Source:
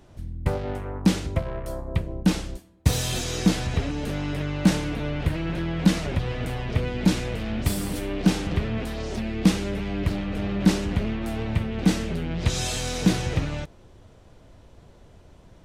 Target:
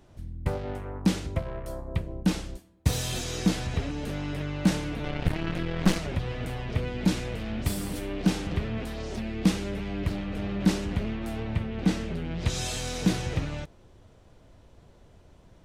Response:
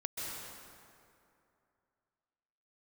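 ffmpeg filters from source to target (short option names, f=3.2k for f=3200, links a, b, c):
-filter_complex "[0:a]asettb=1/sr,asplit=3[a][b][c];[a]atrim=end=5.044[d];[b]atrim=start=5.04:end=5.98,asetpts=PTS-STARTPTS,afade=t=in:d=0.004:c=qsin,afade=t=out:st=0.936:d=0.004:c=qsin,aeval=exprs='0.501*(cos(1*acos(clip(val(0)/0.501,-1,1)))-cos(1*PI/2))+0.0891*(cos(8*acos(clip(val(0)/0.501,-1,1)))-cos(8*PI/2))':c=same[e];[c]atrim=start=5.976[f];[d][e]acrossfade=d=0.004:c1=hsin:c2=qsin[g];[g][f]acrossfade=d=0.004:c1=qsin:c2=hsin,asettb=1/sr,asplit=3[h][i][j];[h]atrim=end=11.404[k];[i]atrim=start=11.4:end=12.25,asetpts=PTS-STARTPTS,afade=t=in:d=0.004:c=qsin,afade=t=out:st=0.846:d=0.004:c=qsin,highshelf=f=6.6k:g=-8[l];[j]atrim=start=12.246[m];[k][l]acrossfade=d=0.004:c1=hsin:c2=qsin[n];[n][m]acrossfade=d=0.004:c1=qsin:c2=hsin,volume=-4dB"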